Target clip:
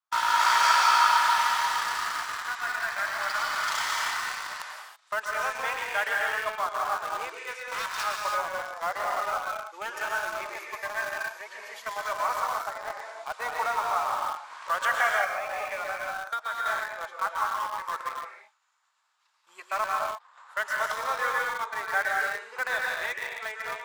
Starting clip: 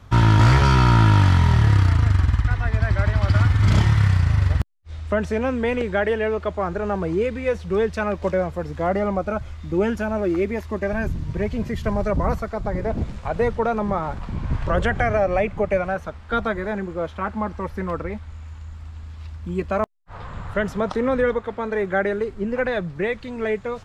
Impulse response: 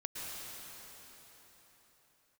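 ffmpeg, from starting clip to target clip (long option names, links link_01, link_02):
-filter_complex "[0:a]agate=range=-33dB:threshold=-24dB:ratio=3:detection=peak,asettb=1/sr,asplit=3[link_01][link_02][link_03];[link_01]atrim=end=7.534[link_04];[link_02]atrim=start=7.53:end=8.04,asetpts=PTS-STARTPTS,afade=type=in:duration=0.004:curve=qsin,afade=type=out:start_time=0.506:duration=0.004:curve=qsin,aeval=exprs='0.0596*(abs(mod(val(0)/0.0596+3,4)-2)-1)':channel_layout=same[link_05];[link_03]atrim=start=8.036[link_06];[link_04][link_05]acrossfade=duration=0.004:curve1=hsin:curve2=qsin[link_07];[link_07][link_06]acrossfade=duration=0.004:curve1=qsin:curve2=hsin,highpass=frequency=980:width=0.5412,highpass=frequency=980:width=1.3066,equalizer=frequency=2400:width_type=o:width=1.6:gain=-8[link_08];[1:a]atrim=start_sample=2205,afade=type=out:start_time=0.39:duration=0.01,atrim=end_sample=17640[link_09];[link_08][link_09]afir=irnorm=-1:irlink=0,asplit=2[link_10][link_11];[link_11]acrusher=bits=5:mix=0:aa=0.000001,volume=-10dB[link_12];[link_10][link_12]amix=inputs=2:normalize=0,asettb=1/sr,asplit=3[link_13][link_14][link_15];[link_13]atrim=end=15.244[link_16];[link_14]atrim=start=15.24:end=16.66,asetpts=PTS-STARTPTS,afade=type=in:duration=0.004:curve=qsin,afade=type=out:start_time=1.416:duration=0.004:curve=qsin,acompressor=threshold=-34dB:ratio=6[link_17];[link_15]atrim=start=16.656[link_18];[link_16][link_17]acrossfade=duration=0.004:curve1=hsin:curve2=qsin[link_19];[link_19][link_18]acrossfade=duration=0.004:curve1=qsin:curve2=hsin,volume=5.5dB"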